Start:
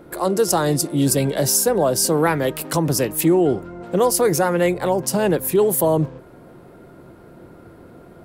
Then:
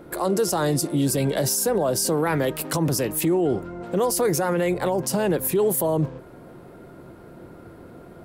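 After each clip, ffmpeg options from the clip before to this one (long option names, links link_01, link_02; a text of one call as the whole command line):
ffmpeg -i in.wav -af "alimiter=limit=-14dB:level=0:latency=1:release=32" out.wav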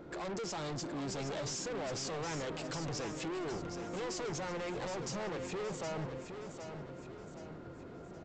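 ffmpeg -i in.wav -af "aresample=16000,asoftclip=type=tanh:threshold=-31.5dB,aresample=44100,aecho=1:1:768|1536|2304|3072|3840:0.398|0.179|0.0806|0.0363|0.0163,volume=-6dB" out.wav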